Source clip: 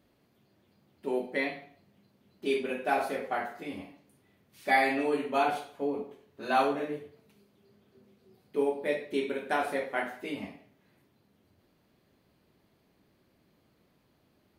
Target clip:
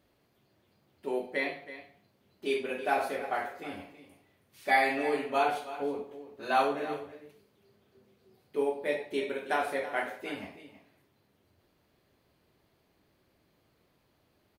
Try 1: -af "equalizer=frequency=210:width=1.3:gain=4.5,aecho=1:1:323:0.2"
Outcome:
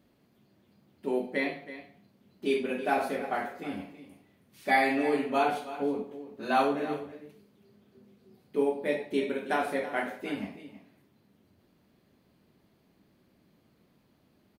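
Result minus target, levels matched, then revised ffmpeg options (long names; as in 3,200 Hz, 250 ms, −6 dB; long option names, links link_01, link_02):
250 Hz band +5.5 dB
-af "equalizer=frequency=210:width=1.3:gain=-6,aecho=1:1:323:0.2"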